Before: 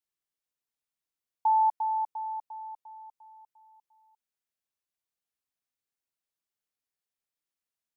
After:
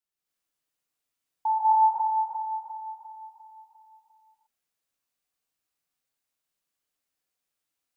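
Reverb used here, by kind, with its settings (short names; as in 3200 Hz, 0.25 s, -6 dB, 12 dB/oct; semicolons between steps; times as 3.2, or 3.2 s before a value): non-linear reverb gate 0.33 s rising, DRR -8 dB; gain -2 dB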